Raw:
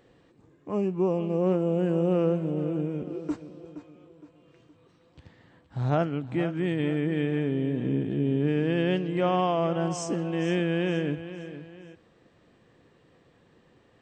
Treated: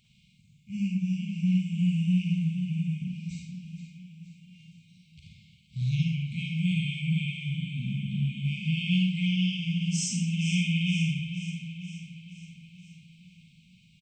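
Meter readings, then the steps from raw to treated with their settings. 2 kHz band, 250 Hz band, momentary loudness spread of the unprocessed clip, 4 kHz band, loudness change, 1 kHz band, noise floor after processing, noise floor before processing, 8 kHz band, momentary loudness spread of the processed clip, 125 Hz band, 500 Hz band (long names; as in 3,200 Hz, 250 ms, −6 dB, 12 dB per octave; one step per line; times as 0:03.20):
+2.0 dB, −1.0 dB, 13 LU, +7.5 dB, −1.5 dB, below −40 dB, −61 dBFS, −62 dBFS, +7.0 dB, 17 LU, +3.0 dB, below −40 dB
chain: linear-phase brick-wall band-stop 230–2,100 Hz
low-shelf EQ 350 Hz −6 dB
on a send: repeating echo 474 ms, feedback 59%, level −13.5 dB
on the sum: four-comb reverb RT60 0.6 s, DRR −1.5 dB
level +3.5 dB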